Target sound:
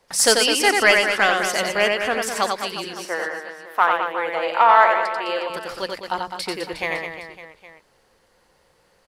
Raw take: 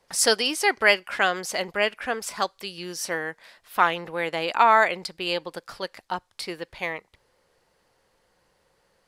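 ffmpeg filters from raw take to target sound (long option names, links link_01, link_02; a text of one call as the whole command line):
ffmpeg -i in.wav -filter_complex "[0:a]bandreject=frequency=60:width_type=h:width=6,bandreject=frequency=120:width_type=h:width=6,bandreject=frequency=180:width_type=h:width=6,asettb=1/sr,asplit=3[link_01][link_02][link_03];[link_01]atrim=end=2.844[link_04];[link_02]atrim=start=2.84:end=5.5,asetpts=PTS-STARTPTS,afade=type=in:duration=0.004:curve=qsin,afade=type=out:start_time=2.656:duration=0.004:curve=qsin,acrossover=split=350 2100:gain=0.0794 1 0.251[link_05][link_06][link_07];[link_05][link_06][link_07]amix=inputs=3:normalize=0[link_08];[link_03]atrim=start=5.496[link_09];[link_04][link_08]acrossfade=duration=0.004:curve1=hsin:curve2=qsin[link_10];[link_10][link_09]acrossfade=duration=0.004:curve1=qsin:curve2=hsin,asoftclip=type=tanh:threshold=-7dB,aecho=1:1:90|207|359.1|556.8|813.9:0.631|0.398|0.251|0.158|0.1,volume=4dB" out.wav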